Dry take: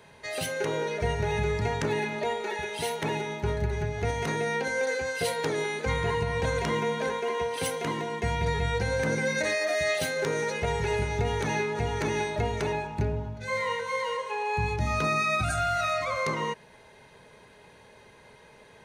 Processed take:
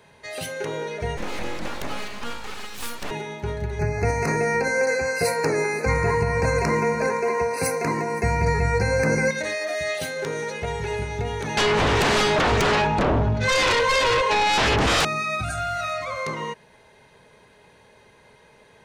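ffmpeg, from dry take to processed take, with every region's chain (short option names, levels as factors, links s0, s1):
-filter_complex "[0:a]asettb=1/sr,asplit=3[s0][s1][s2];[s0]atrim=end=1.174[s3];[s1]atrim=start=1.17:end=3.11,asetpts=PTS-STARTPTS,afade=t=in:d=0.004:c=qsin,afade=t=out:st=1.936:d=0.004:c=qsin,highshelf=f=4600:g=5,aeval=exprs='abs(val(0))':c=same[s4];[s2]atrim=start=3.106[s5];[s3][s4]acrossfade=d=0.004:c1=hsin:c2=qsin[s6];[s6][s5]acrossfade=d=0.004:c1=qsin:c2=hsin,asettb=1/sr,asplit=3[s7][s8][s9];[s7]atrim=end=3.794[s10];[s8]atrim=start=3.79:end=9.31,asetpts=PTS-STARTPTS,afade=t=in:d=0.004:c=qsin,afade=t=out:st=5.516:d=0.004:c=qsin,acontrast=63,asuperstop=centerf=3300:order=12:qfactor=2.3,aecho=1:1:516:0.106,atrim=end_sample=243432[s11];[s9]atrim=start=9.306[s12];[s10][s11]acrossfade=d=0.004:c1=hsin:c2=qsin[s13];[s13][s12]acrossfade=d=0.004:c1=qsin:c2=hsin,asettb=1/sr,asplit=3[s14][s15][s16];[s14]atrim=end=11.574[s17];[s15]atrim=start=11.57:end=15.05,asetpts=PTS-STARTPTS,afade=t=in:d=0.004:c=qsin,afade=t=out:st=3.476:d=0.004:c=qsin,lowpass=6200,aeval=exprs='0.15*sin(PI/2*4.47*val(0)/0.15)':c=same[s18];[s16]atrim=start=15.046[s19];[s17][s18]acrossfade=d=0.004:c1=hsin:c2=qsin[s20];[s20][s19]acrossfade=d=0.004:c1=qsin:c2=hsin"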